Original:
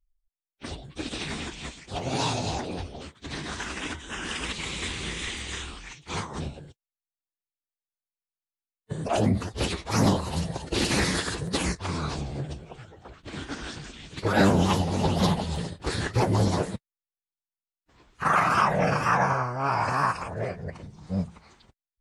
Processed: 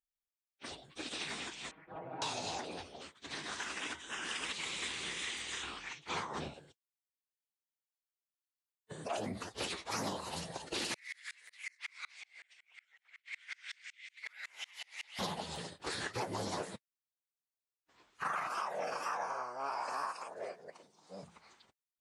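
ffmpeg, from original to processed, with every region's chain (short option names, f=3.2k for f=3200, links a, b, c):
-filter_complex "[0:a]asettb=1/sr,asplit=3[a][b][c];[a]atrim=end=1.714[d];[b]atrim=start=1.71:end=2.22,asetpts=PTS-STARTPTS,afade=t=in:d=0.004:c=qsin,afade=t=out:st=0.506:d=0.004:c=qsin,lowpass=f=1.6k:w=0.5412,lowpass=f=1.6k:w=1.3066,aecho=1:1:6.3:0.99,atrim=end_sample=22491,acompressor=threshold=-33dB:ratio=3:attack=3.2:release=140:knee=1:detection=peak[e];[c]atrim=start=2.216[f];[d][e]acrossfade=d=0.004:c1=hsin:c2=qsin[g];[g][f]acrossfade=d=0.004:c1=qsin:c2=hsin,asettb=1/sr,asplit=3[h][i][j];[h]atrim=end=5.634[k];[i]atrim=start=5.63:end=6.54,asetpts=PTS-STARTPTS,afade=t=in:d=0.004:c=qsin,afade=t=out:st=0.906:d=0.004:c=qsin,aemphasis=mode=reproduction:type=50kf,acontrast=53[l];[j]atrim=start=6.536[m];[k][l]acrossfade=d=0.004:c1=hsin:c2=qsin[n];[n][m]acrossfade=d=0.004:c1=qsin:c2=hsin,asettb=1/sr,asplit=3[o][p][q];[o]atrim=end=10.944[r];[p]atrim=start=10.94:end=15.19,asetpts=PTS-STARTPTS,afade=t=in:d=0.004:c=qsin,afade=t=out:st=4.246:d=0.004:c=qsin,highpass=f=2.1k:t=q:w=8.3,acompressor=threshold=-29dB:ratio=16:attack=3.2:release=140:knee=1:detection=peak,aeval=exprs='val(0)*pow(10,-32*if(lt(mod(-5.4*n/s,1),2*abs(-5.4)/1000),1-mod(-5.4*n/s,1)/(2*abs(-5.4)/1000),(mod(-5.4*n/s,1)-2*abs(-5.4)/1000)/(1-2*abs(-5.4)/1000))/20)':c=same[s];[q]atrim=start=15.186[t];[r][s]acrossfade=d=0.004:c1=hsin:c2=qsin[u];[u][t]acrossfade=d=0.004:c1=qsin:c2=hsin,asettb=1/sr,asplit=3[v][w][x];[v]atrim=end=18.474[y];[w]atrim=start=18.47:end=21.23,asetpts=PTS-STARTPTS,afade=t=in:d=0.004:c=qsin,afade=t=out:st=2.756:d=0.004:c=qsin,highpass=350,equalizer=f=1.9k:t=o:w=1.5:g=-7.5[z];[x]atrim=start=21.226[aa];[y][z]acrossfade=d=0.004:c1=hsin:c2=qsin[ab];[ab][aa]acrossfade=d=0.004:c1=qsin:c2=hsin,highpass=f=620:p=1,acompressor=threshold=-29dB:ratio=6,volume=-5dB"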